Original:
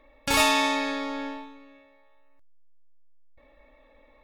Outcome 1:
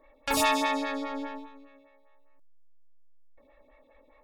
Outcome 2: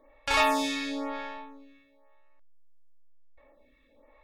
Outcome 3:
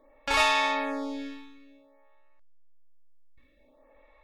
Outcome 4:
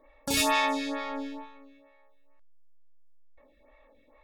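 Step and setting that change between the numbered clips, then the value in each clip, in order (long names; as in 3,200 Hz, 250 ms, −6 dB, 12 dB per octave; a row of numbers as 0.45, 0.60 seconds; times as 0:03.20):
phaser with staggered stages, speed: 4.9, 1, 0.53, 2.2 Hertz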